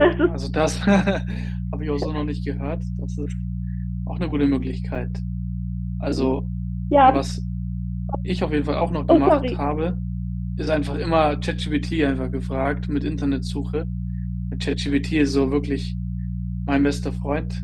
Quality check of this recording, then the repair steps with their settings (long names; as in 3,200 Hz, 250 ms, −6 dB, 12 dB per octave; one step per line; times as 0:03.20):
mains hum 60 Hz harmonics 3 −27 dBFS
0:04.95–0:04.96: drop-out 5.1 ms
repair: hum removal 60 Hz, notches 3
repair the gap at 0:04.95, 5.1 ms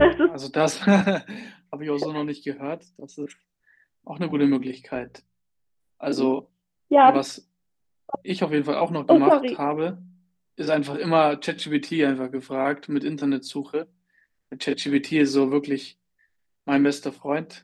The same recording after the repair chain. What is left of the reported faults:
none of them is left